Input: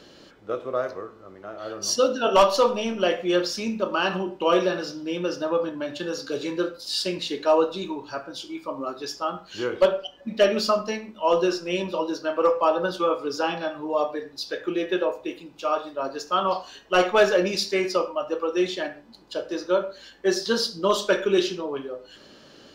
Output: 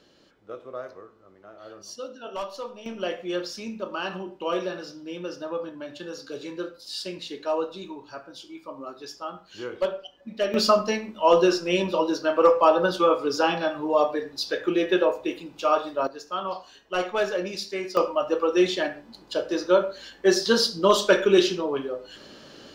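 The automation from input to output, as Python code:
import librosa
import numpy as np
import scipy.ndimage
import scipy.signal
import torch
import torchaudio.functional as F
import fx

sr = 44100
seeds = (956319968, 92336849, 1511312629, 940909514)

y = fx.gain(x, sr, db=fx.steps((0.0, -9.5), (1.82, -16.0), (2.86, -7.0), (10.54, 3.0), (16.07, -7.0), (17.97, 3.0)))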